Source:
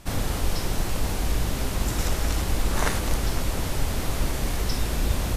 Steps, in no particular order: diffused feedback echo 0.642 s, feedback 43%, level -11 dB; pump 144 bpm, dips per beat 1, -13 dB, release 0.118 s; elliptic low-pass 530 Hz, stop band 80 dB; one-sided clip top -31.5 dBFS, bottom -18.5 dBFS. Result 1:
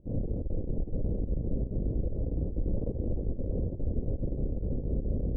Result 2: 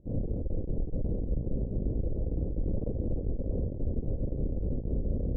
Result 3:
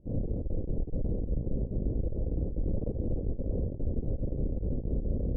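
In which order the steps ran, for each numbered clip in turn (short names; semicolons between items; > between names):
one-sided clip > diffused feedback echo > pump > elliptic low-pass; pump > diffused feedback echo > one-sided clip > elliptic low-pass; diffused feedback echo > one-sided clip > elliptic low-pass > pump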